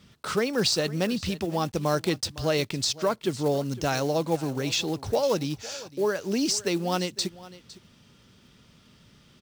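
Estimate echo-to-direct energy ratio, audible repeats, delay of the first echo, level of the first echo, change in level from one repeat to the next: −18.5 dB, 1, 508 ms, −18.5 dB, repeats not evenly spaced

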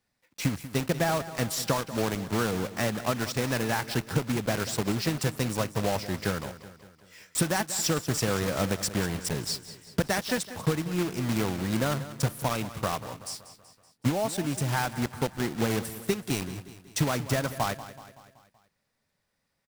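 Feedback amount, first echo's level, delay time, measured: 53%, −14.5 dB, 189 ms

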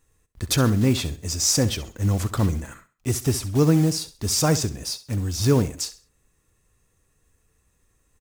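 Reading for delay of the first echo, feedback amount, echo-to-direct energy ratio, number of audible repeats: 66 ms, 30%, −14.5 dB, 2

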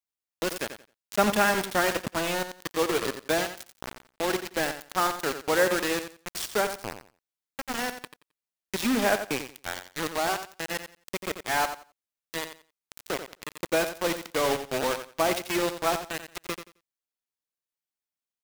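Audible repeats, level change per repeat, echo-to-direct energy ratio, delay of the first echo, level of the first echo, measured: 2, −14.0 dB, −10.0 dB, 88 ms, −10.0 dB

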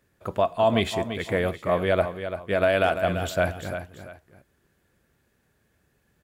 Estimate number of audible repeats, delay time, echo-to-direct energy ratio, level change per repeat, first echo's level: 2, 340 ms, −9.0 dB, −10.0 dB, −9.5 dB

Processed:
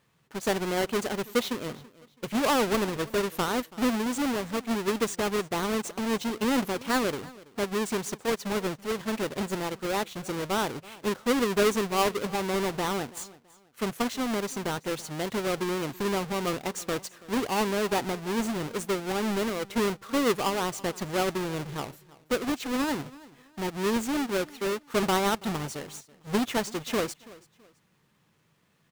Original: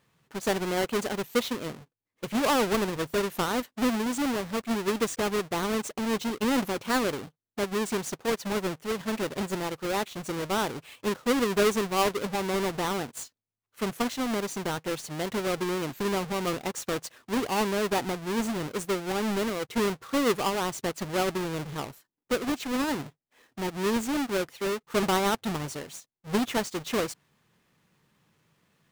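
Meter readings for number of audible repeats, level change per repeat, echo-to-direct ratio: 2, −10.0 dB, −20.5 dB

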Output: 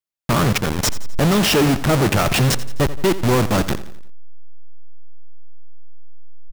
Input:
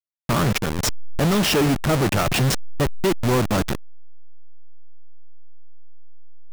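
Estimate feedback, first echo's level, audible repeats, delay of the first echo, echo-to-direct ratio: 49%, −15.5 dB, 4, 86 ms, −14.5 dB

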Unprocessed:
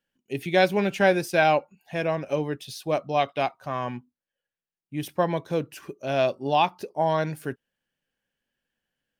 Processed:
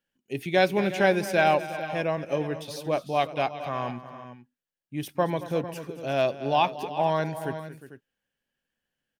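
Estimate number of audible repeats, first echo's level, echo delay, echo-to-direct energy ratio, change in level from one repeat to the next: 3, −15.5 dB, 226 ms, −10.0 dB, repeats not evenly spaced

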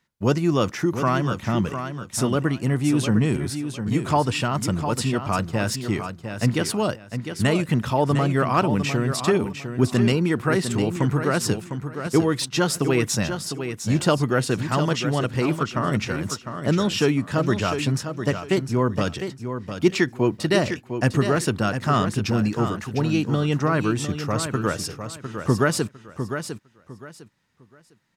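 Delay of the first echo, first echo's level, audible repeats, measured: 704 ms, −8.5 dB, 3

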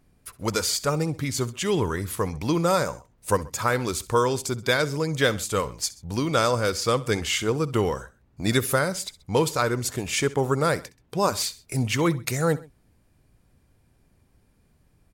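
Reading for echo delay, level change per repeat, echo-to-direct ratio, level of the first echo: 65 ms, −6.0 dB, −18.0 dB, −19.0 dB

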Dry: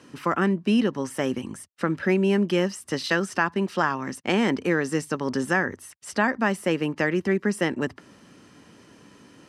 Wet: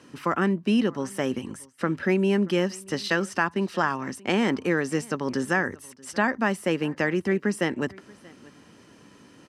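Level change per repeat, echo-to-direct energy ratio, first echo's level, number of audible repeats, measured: repeats not evenly spaced, −24.0 dB, −24.0 dB, 1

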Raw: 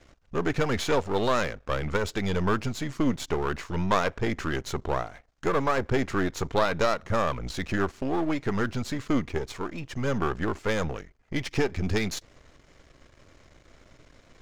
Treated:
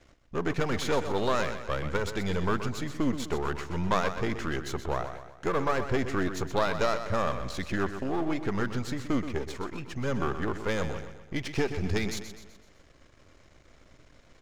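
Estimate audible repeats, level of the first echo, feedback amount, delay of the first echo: 4, −10.0 dB, 47%, 126 ms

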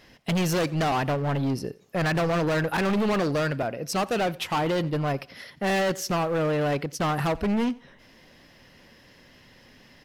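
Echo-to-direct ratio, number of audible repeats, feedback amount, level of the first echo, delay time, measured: −22.0 dB, 2, 32%, −22.5 dB, 89 ms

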